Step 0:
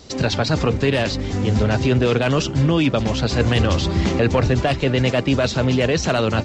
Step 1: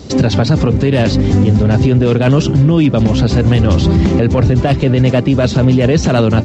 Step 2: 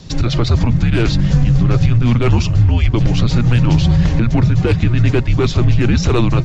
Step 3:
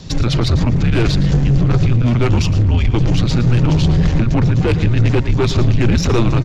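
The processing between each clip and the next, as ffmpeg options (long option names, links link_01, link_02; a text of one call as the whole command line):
ffmpeg -i in.wav -af "equalizer=frequency=160:width=0.36:gain=11,alimiter=limit=-8.5dB:level=0:latency=1:release=168,volume=5.5dB" out.wav
ffmpeg -i in.wav -af "dynaudnorm=framelen=230:gausssize=3:maxgain=11.5dB,afreqshift=-240,volume=-3.5dB" out.wav
ffmpeg -i in.wav -af "aeval=exprs='(tanh(3.98*val(0)+0.25)-tanh(0.25))/3.98':channel_layout=same,aecho=1:1:113:0.2,volume=3dB" out.wav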